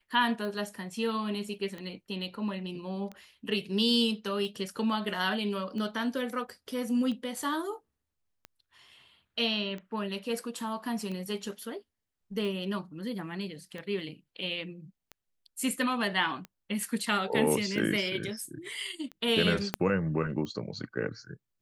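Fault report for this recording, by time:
tick 45 rpm -27 dBFS
19.74 s: pop -12 dBFS

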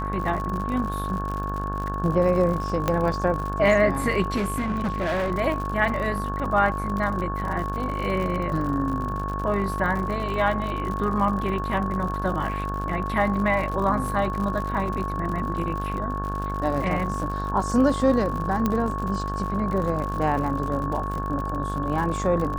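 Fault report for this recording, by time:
buzz 50 Hz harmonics 35 -30 dBFS
crackle 76 per s -30 dBFS
whine 1.1 kHz -30 dBFS
2.88 s: pop -9 dBFS
4.36–5.32 s: clipped -21.5 dBFS
18.66 s: pop -10 dBFS

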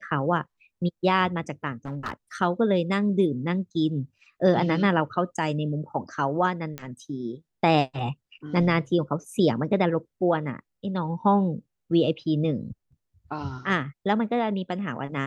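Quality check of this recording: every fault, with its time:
1.85–2.14 s: clipped -26.5 dBFS
6.78 s: pop -18 dBFS

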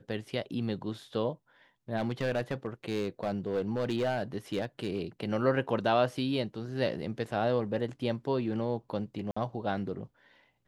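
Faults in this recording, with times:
1.96–4.99 s: clipped -24.5 dBFS
9.31–9.37 s: dropout 55 ms

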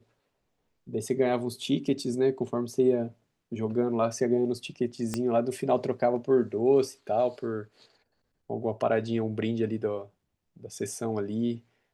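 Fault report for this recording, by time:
5.14 s: pop -16 dBFS

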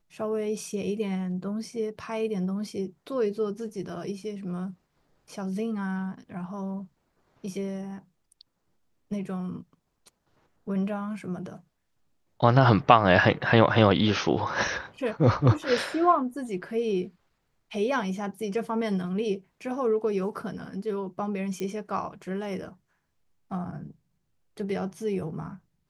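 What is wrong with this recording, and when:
21.60 s: pop -21 dBFS

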